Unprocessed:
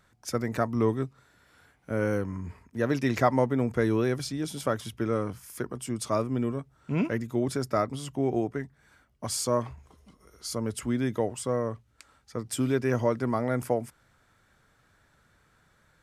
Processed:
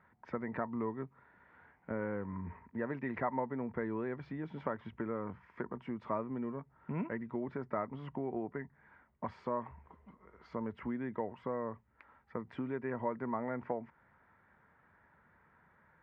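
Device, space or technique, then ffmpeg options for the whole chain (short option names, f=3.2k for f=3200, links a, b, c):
bass amplifier: -af "equalizer=f=220:t=o:w=1.6:g=4.5,acompressor=threshold=-31dB:ratio=3,highpass=65,equalizer=f=120:t=q:w=4:g=-8,equalizer=f=290:t=q:w=4:g=-5,equalizer=f=940:t=q:w=4:g=10,equalizer=f=1.9k:t=q:w=4:g=6,lowpass=f=2.2k:w=0.5412,lowpass=f=2.2k:w=1.3066,volume=-4dB"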